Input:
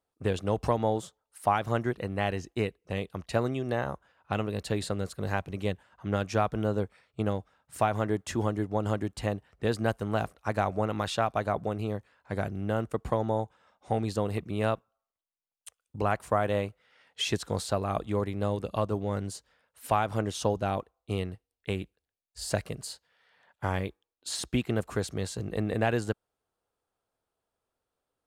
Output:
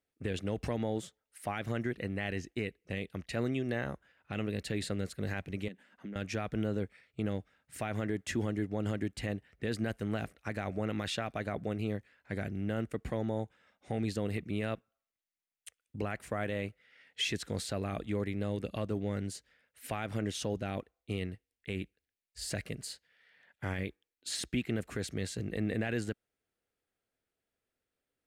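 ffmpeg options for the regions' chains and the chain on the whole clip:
-filter_complex "[0:a]asettb=1/sr,asplit=3[a][b][c];[a]atrim=end=5.684[d];[b]atrim=start=5.68:end=6.16,asetpts=PTS-STARTPTS,afade=t=in:d=0.004:c=qsin,afade=t=out:st=0.476:d=0.004:c=qsin,lowshelf=f=150:t=q:w=3:g=-12,acompressor=threshold=-38dB:ratio=10:attack=3.2:release=140:knee=1:detection=peak[e];[c]atrim=start=6.156[f];[d][e]acrossfade=d=0.004:c1=hsin:c2=qsin[g];[g][f]acrossfade=d=0.004:c1=qsin:c2=hsin,equalizer=f=250:t=o:w=1:g=4,equalizer=f=1k:t=o:w=1:g=-10,equalizer=f=2k:t=o:w=1:g=9,alimiter=limit=-19dB:level=0:latency=1:release=30,volume=-3.5dB"

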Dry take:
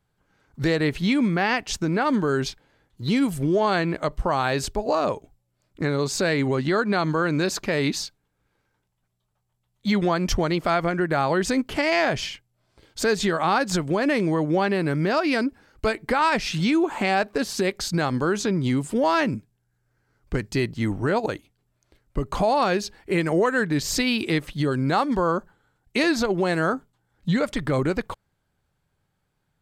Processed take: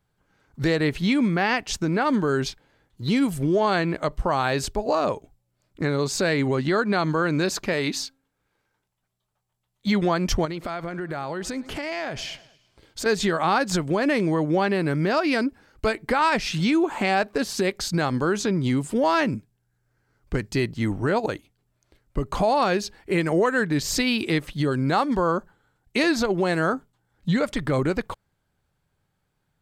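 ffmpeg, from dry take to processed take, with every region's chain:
-filter_complex "[0:a]asettb=1/sr,asplit=3[a][b][c];[a]atrim=end=7.734[d];[b]atrim=start=7.73:end=9.87,asetpts=PTS-STARTPTS,afade=t=in:d=0.004:c=qsin,afade=t=out:st=2.136:d=0.004:c=qsin,lowshelf=f=250:g=-6.5,bandreject=f=268.8:t=h:w=4,bandreject=f=537.6:t=h:w=4,bandreject=f=806.4:t=h:w=4,bandreject=f=1.0752k:t=h:w=4,bandreject=f=1.344k:t=h:w=4,bandreject=f=1.6128k:t=h:w=4[e];[c]atrim=start=9.866[f];[d][e]acrossfade=d=0.004:c1=hsin:c2=qsin[g];[g][f]acrossfade=d=0.004:c1=qsin:c2=hsin,asettb=1/sr,asplit=3[h][i][j];[h]atrim=end=10.454[k];[i]atrim=start=10.45:end=13.06,asetpts=PTS-STARTPTS,afade=t=in:d=0.004:c=qsin,afade=t=out:st=2.606:d=0.004:c=qsin,aecho=1:1:105|210|315|420:0.0708|0.0396|0.0222|0.0124,atrim=end_sample=115101,acompressor=threshold=-29dB:ratio=3:attack=3.2:release=140:knee=1:detection=peak[l];[j]atrim=start=13.056[m];[k][l]acrossfade=d=0.004:c1=hsin:c2=qsin[n];[n][m]acrossfade=d=0.004:c1=qsin:c2=hsin"

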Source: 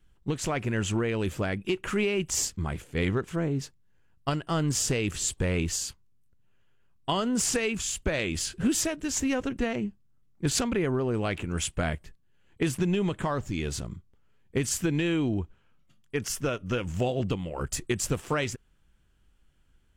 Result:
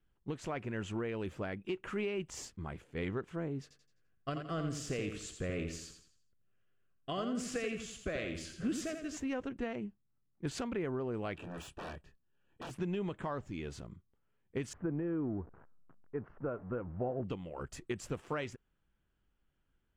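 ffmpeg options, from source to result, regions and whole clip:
-filter_complex "[0:a]asettb=1/sr,asplit=3[a][b][c];[a]atrim=end=3.624[d];[b]atrim=start=3.62:end=9.17,asetpts=PTS-STARTPTS,afade=t=in:d=0.004:c=qsin,afade=t=out:st=5.546:d=0.004:c=qsin,asuperstop=centerf=900:order=8:qfactor=3.9,aecho=1:1:85|170|255|340|425:0.447|0.174|0.0679|0.0265|0.0103,atrim=end_sample=244755[e];[c]atrim=start=9.166[f];[d][e]acrossfade=d=0.004:c1=hsin:c2=qsin[g];[g][f]acrossfade=d=0.004:c1=qsin:c2=hsin,asettb=1/sr,asplit=3[h][i][j];[h]atrim=end=11.354[k];[i]atrim=start=11.35:end=12.71,asetpts=PTS-STARTPTS,afade=t=in:d=0.004:c=qsin,afade=t=out:st=1.356:d=0.004:c=qsin,asplit=2[l][m];[m]adelay=29,volume=-6dB[n];[l][n]amix=inputs=2:normalize=0,atrim=end_sample=59976,aeval=exprs='0.0376*(abs(mod(val(0)/0.0376+3,4)-2)-1)':c=same,asuperstop=centerf=2100:order=8:qfactor=6[o];[j]atrim=start=12.706[p];[k][o]acrossfade=d=0.004:c1=hsin:c2=qsin[q];[q][p]acrossfade=d=0.004:c1=qsin:c2=hsin,asettb=1/sr,asplit=3[r][s][t];[r]atrim=end=14.734[u];[s]atrim=start=14.73:end=17.24,asetpts=PTS-STARTPTS,afade=t=in:d=0.004:c=qsin,afade=t=out:st=2.506:d=0.004:c=qsin,aeval=exprs='val(0)+0.5*0.0112*sgn(val(0))':c=same,lowpass=f=1.4k:w=0.5412,lowpass=f=1.4k:w=1.3066[v];[t]atrim=start=17.236[w];[u][v]acrossfade=d=0.004:c1=hsin:c2=qsin[x];[x][w]acrossfade=d=0.004:c1=qsin:c2=hsin,lowpass=f=1.9k:p=1,lowshelf=f=150:g=-7.5,volume=-7.5dB"

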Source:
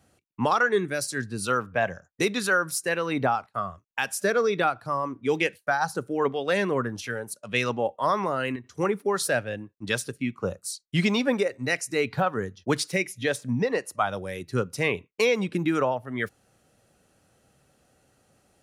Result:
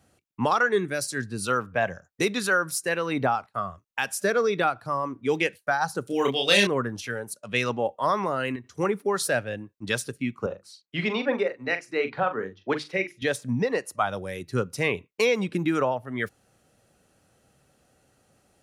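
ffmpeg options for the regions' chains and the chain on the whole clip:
-filter_complex "[0:a]asettb=1/sr,asplit=3[a][b][c];[a]atrim=end=6.074[d];[b]atrim=start=6.07:end=6.67,asetpts=PTS-STARTPTS,afade=t=in:d=0.004:c=qsin,afade=t=out:st=0.596:d=0.004:c=qsin,highshelf=f=2.2k:t=q:w=1.5:g=12,asplit=2[e][f];[f]adelay=30,volume=-3dB[g];[e][g]amix=inputs=2:normalize=0,atrim=end_sample=26460[h];[c]atrim=start=6.666[i];[d][h]acrossfade=d=0.004:c1=hsin:c2=qsin[j];[j][i]acrossfade=d=0.004:c1=qsin:c2=hsin,asettb=1/sr,asplit=3[k][l][m];[k]atrim=end=10.464[n];[l]atrim=start=10.46:end=13.22,asetpts=PTS-STARTPTS,afade=t=in:d=0.004:c=qsin,afade=t=out:st=2.756:d=0.004:c=qsin,acrossover=split=240 3800:gain=0.251 1 0.0708[o][p][q];[o][p][q]amix=inputs=3:normalize=0,bandreject=f=50:t=h:w=6,bandreject=f=100:t=h:w=6,bandreject=f=150:t=h:w=6,bandreject=f=200:t=h:w=6,bandreject=f=250:t=h:w=6,bandreject=f=300:t=h:w=6,bandreject=f=350:t=h:w=6,asplit=2[r][s];[s]adelay=42,volume=-10dB[t];[r][t]amix=inputs=2:normalize=0,atrim=end_sample=121716[u];[m]atrim=start=13.216[v];[n][u]acrossfade=d=0.004:c1=hsin:c2=qsin[w];[w][v]acrossfade=d=0.004:c1=qsin:c2=hsin"

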